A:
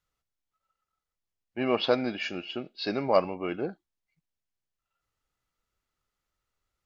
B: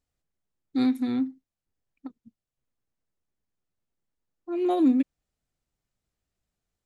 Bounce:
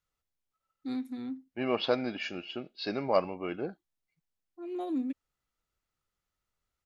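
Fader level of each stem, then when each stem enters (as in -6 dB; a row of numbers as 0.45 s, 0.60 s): -3.5 dB, -11.5 dB; 0.00 s, 0.10 s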